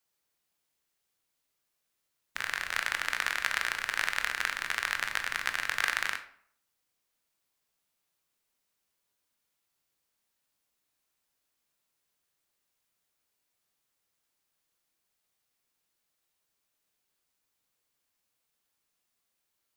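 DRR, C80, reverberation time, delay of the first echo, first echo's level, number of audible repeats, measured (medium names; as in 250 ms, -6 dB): 6.5 dB, 15.0 dB, 0.60 s, no echo, no echo, no echo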